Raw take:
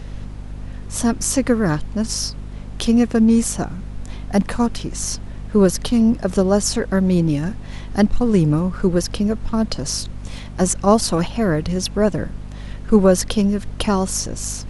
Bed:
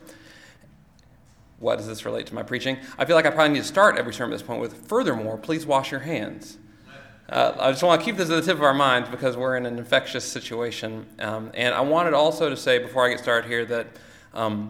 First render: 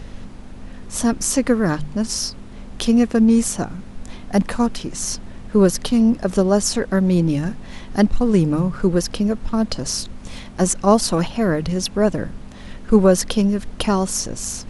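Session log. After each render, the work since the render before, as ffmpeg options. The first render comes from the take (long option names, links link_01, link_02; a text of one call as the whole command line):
ffmpeg -i in.wav -af "bandreject=frequency=50:width_type=h:width=4,bandreject=frequency=100:width_type=h:width=4,bandreject=frequency=150:width_type=h:width=4" out.wav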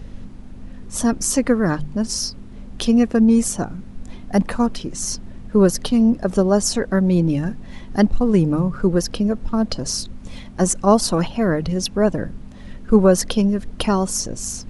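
ffmpeg -i in.wav -af "afftdn=noise_reduction=7:noise_floor=-37" out.wav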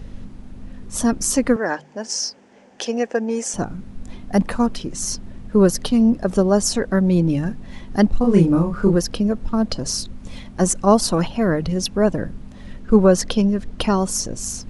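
ffmpeg -i in.wav -filter_complex "[0:a]asettb=1/sr,asplit=3[link_01][link_02][link_03];[link_01]atrim=end=1.564[link_04];[link_02]atrim=start=1.56:end=3.54,asetpts=PTS-STARTPTS,afade=type=in:duration=0.004:curve=qsin,afade=type=out:start_time=1.976:duration=0.004:curve=qsin,highpass=450,equalizer=frequency=510:width_type=q:width=4:gain=5,equalizer=frequency=820:width_type=q:width=4:gain=6,equalizer=frequency=1200:width_type=q:width=4:gain=-7,equalizer=frequency=1700:width_type=q:width=4:gain=5,equalizer=frequency=3900:width_type=q:width=4:gain=-8,equalizer=frequency=6100:width_type=q:width=4:gain=3,lowpass=frequency=7800:width=0.5412,lowpass=frequency=7800:width=1.3066[link_05];[link_03]atrim=start=3.536[link_06];[link_04][link_05]acrossfade=duration=0.004:curve1=hsin:curve2=qsin[link_07];[link_07][link_06]acrossfade=duration=0.004:curve1=qsin:curve2=hsin,asettb=1/sr,asplit=3[link_08][link_09][link_10];[link_08]atrim=end=8.214[link_11];[link_09]atrim=start=8.21:end=8.96,asetpts=PTS-STARTPTS,afade=type=in:duration=0.004:curve=qsin,afade=type=out:start_time=0.746:duration=0.004:curve=qsin,asplit=2[link_12][link_13];[link_13]adelay=30,volume=-2.5dB[link_14];[link_12][link_14]amix=inputs=2:normalize=0,atrim=end_sample=33075[link_15];[link_10]atrim=start=8.956[link_16];[link_11][link_15]acrossfade=duration=0.004:curve1=hsin:curve2=qsin[link_17];[link_17][link_16]acrossfade=duration=0.004:curve1=qsin:curve2=hsin,asettb=1/sr,asplit=3[link_18][link_19][link_20];[link_18]atrim=end=12.804[link_21];[link_19]atrim=start=12.8:end=13.98,asetpts=PTS-STARTPTS,afade=type=in:duration=0.004:curve=qsin,afade=type=out:start_time=1.176:duration=0.004:curve=qsin,lowpass=8700[link_22];[link_20]atrim=start=13.976[link_23];[link_21][link_22]acrossfade=duration=0.004:curve1=hsin:curve2=qsin[link_24];[link_24][link_23]acrossfade=duration=0.004:curve1=qsin:curve2=hsin" out.wav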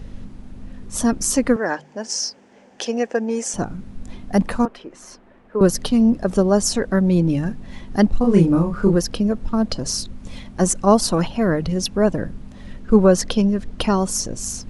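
ffmpeg -i in.wav -filter_complex "[0:a]asettb=1/sr,asplit=3[link_01][link_02][link_03];[link_01]atrim=end=4.654[link_04];[link_02]atrim=start=4.65:end=5.61,asetpts=PTS-STARTPTS,afade=type=in:duration=0.004:curve=qsin,afade=type=out:start_time=0.956:duration=0.004:curve=qsin,acrossover=split=350 2600:gain=0.0794 1 0.112[link_05][link_06][link_07];[link_05][link_06][link_07]amix=inputs=3:normalize=0[link_08];[link_03]atrim=start=5.606[link_09];[link_04][link_08]acrossfade=duration=0.004:curve1=hsin:curve2=qsin[link_10];[link_10][link_09]acrossfade=duration=0.004:curve1=qsin:curve2=hsin" out.wav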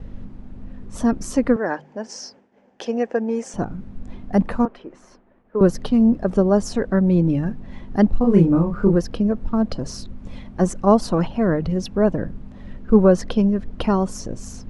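ffmpeg -i in.wav -af "lowpass=frequency=1500:poles=1,agate=range=-33dB:threshold=-44dB:ratio=3:detection=peak" out.wav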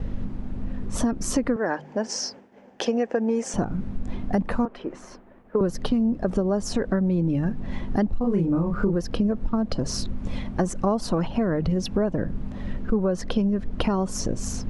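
ffmpeg -i in.wav -filter_complex "[0:a]asplit=2[link_01][link_02];[link_02]alimiter=limit=-13.5dB:level=0:latency=1,volume=0dB[link_03];[link_01][link_03]amix=inputs=2:normalize=0,acompressor=threshold=-20dB:ratio=6" out.wav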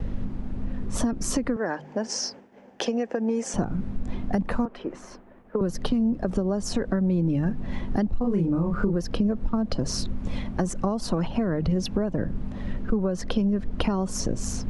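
ffmpeg -i in.wav -filter_complex "[0:a]acrossover=split=210|3000[link_01][link_02][link_03];[link_02]acompressor=threshold=-24dB:ratio=6[link_04];[link_01][link_04][link_03]amix=inputs=3:normalize=0" out.wav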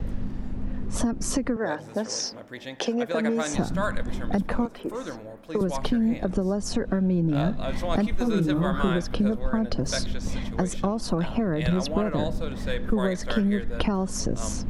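ffmpeg -i in.wav -i bed.wav -filter_complex "[1:a]volume=-12.5dB[link_01];[0:a][link_01]amix=inputs=2:normalize=0" out.wav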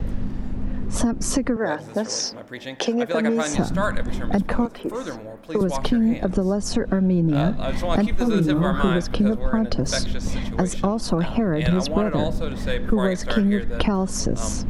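ffmpeg -i in.wav -af "volume=4dB" out.wav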